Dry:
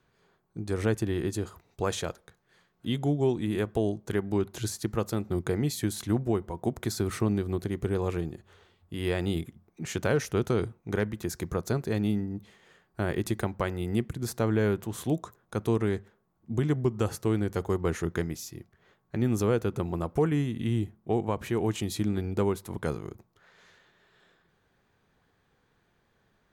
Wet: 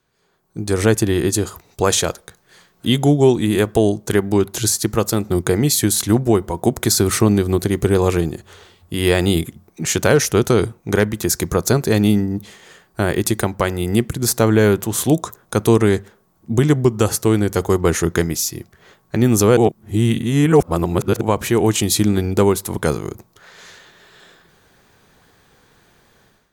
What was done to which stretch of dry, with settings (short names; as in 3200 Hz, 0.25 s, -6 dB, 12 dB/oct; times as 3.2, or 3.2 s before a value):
19.57–21.21 reverse
whole clip: tone controls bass -2 dB, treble +8 dB; AGC gain up to 15.5 dB